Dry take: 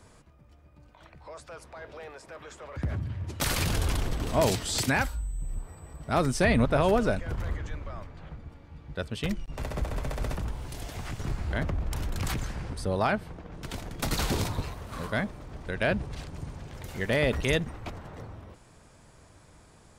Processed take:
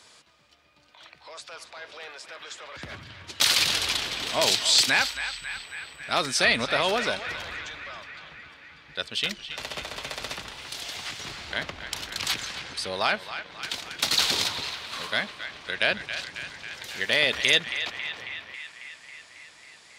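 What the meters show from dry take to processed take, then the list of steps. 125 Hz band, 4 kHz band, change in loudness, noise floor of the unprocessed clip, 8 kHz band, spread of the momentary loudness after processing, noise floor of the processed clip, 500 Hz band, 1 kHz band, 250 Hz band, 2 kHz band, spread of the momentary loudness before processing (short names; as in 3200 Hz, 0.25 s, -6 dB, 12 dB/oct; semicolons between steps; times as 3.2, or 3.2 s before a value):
-14.5 dB, +13.5 dB, +4.5 dB, -56 dBFS, +7.0 dB, 20 LU, -54 dBFS, -2.5 dB, +1.0 dB, -8.5 dB, +7.0 dB, 19 LU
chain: HPF 610 Hz 6 dB/oct; bell 3900 Hz +14.5 dB 1.8 oct; narrowing echo 0.273 s, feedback 74%, band-pass 2000 Hz, level -9 dB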